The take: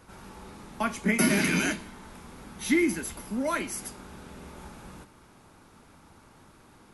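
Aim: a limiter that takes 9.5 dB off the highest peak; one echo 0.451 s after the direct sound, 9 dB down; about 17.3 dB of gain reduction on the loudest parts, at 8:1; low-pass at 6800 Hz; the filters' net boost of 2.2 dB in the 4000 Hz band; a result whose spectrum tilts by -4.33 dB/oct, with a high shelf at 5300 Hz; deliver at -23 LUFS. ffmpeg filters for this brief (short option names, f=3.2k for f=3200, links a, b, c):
-af "lowpass=6.8k,equalizer=f=4k:t=o:g=6,highshelf=f=5.3k:g=-6,acompressor=threshold=-38dB:ratio=8,alimiter=level_in=10.5dB:limit=-24dB:level=0:latency=1,volume=-10.5dB,aecho=1:1:451:0.355,volume=22.5dB"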